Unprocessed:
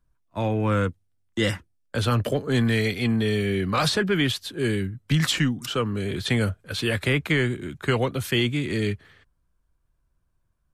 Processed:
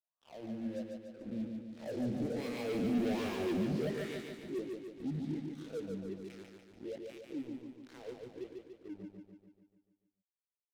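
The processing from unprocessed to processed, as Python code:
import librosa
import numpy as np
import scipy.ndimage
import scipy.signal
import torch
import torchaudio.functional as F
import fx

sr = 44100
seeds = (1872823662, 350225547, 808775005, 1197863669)

p1 = fx.spec_swells(x, sr, rise_s=0.65)
p2 = fx.doppler_pass(p1, sr, speed_mps=15, closest_m=2.1, pass_at_s=3.08)
p3 = np.clip(p2, -10.0 ** (-29.0 / 20.0), 10.0 ** (-29.0 / 20.0))
p4 = scipy.signal.sosfilt(scipy.signal.butter(2, 65.0, 'highpass', fs=sr, output='sos'), p3)
p5 = fx.notch(p4, sr, hz=410.0, q=12.0)
p6 = fx.doubler(p5, sr, ms=32.0, db=-13.5)
p7 = fx.formant_shift(p6, sr, semitones=3)
p8 = fx.wah_lfo(p7, sr, hz=1.3, low_hz=200.0, high_hz=1200.0, q=6.2)
p9 = fx.leveller(p8, sr, passes=5)
p10 = fx.peak_eq(p9, sr, hz=1100.0, db=-14.5, octaves=1.2)
p11 = p10 + fx.echo_feedback(p10, sr, ms=145, feedback_pct=57, wet_db=-4.0, dry=0)
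y = F.gain(torch.from_numpy(p11), 1.0).numpy()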